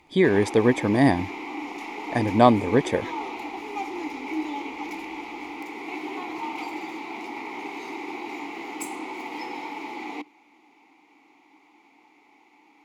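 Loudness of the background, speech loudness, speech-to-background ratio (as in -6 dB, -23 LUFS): -34.0 LUFS, -21.5 LUFS, 12.5 dB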